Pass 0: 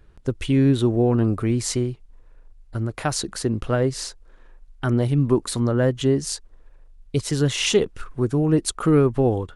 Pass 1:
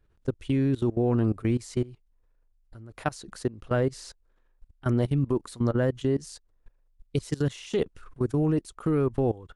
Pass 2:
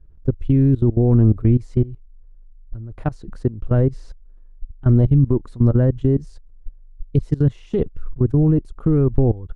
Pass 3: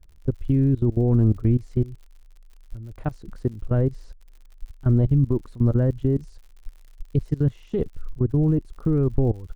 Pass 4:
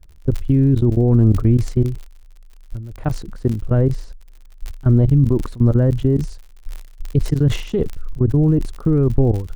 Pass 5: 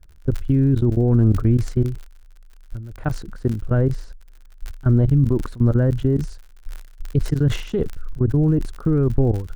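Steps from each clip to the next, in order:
level quantiser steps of 21 dB; gain -2 dB
tilt -4.5 dB/oct; gain -1 dB
crackle 83/s -38 dBFS; gain -4.5 dB
sustainer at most 98 dB/s; gain +5 dB
bell 1500 Hz +7 dB 0.4 oct; gain -2.5 dB

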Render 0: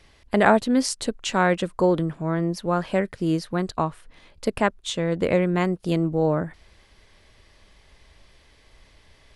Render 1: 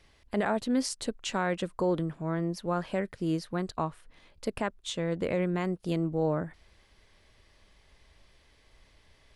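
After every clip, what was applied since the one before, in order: limiter -11.5 dBFS, peak gain reduction 8 dB; gain -6.5 dB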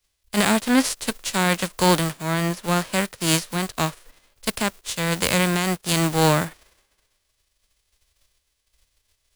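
spectral whitening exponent 0.3; three-band expander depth 70%; gain +8 dB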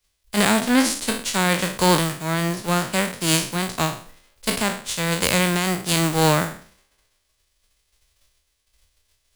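spectral trails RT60 0.46 s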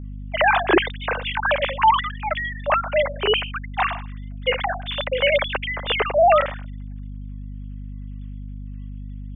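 sine-wave speech; hum 50 Hz, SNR 10 dB

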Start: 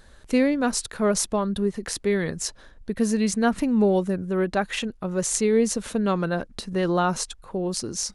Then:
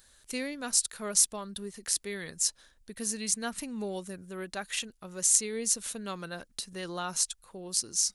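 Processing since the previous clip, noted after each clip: pre-emphasis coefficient 0.9; gain +3 dB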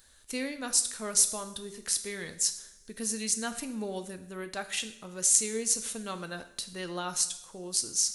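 two-slope reverb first 0.63 s, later 2.2 s, from -21 dB, DRR 8 dB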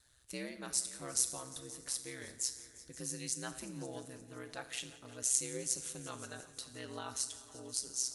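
ring modulator 65 Hz; multi-head echo 0.175 s, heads all three, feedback 50%, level -21 dB; gain -6 dB

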